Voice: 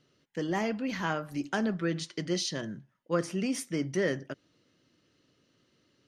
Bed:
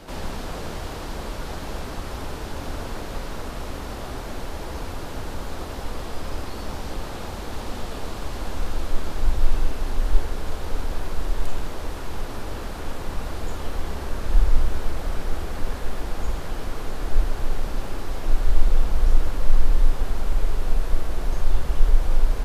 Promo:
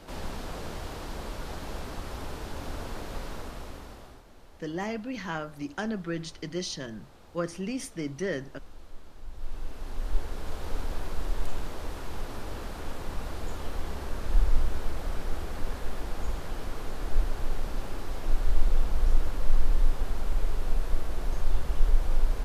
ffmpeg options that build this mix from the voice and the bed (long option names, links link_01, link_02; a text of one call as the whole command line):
ffmpeg -i stem1.wav -i stem2.wav -filter_complex "[0:a]adelay=4250,volume=-2.5dB[link_01];[1:a]volume=10.5dB,afade=type=out:start_time=3.28:duration=0.96:silence=0.158489,afade=type=in:start_time=9.29:duration=1.39:silence=0.158489[link_02];[link_01][link_02]amix=inputs=2:normalize=0" out.wav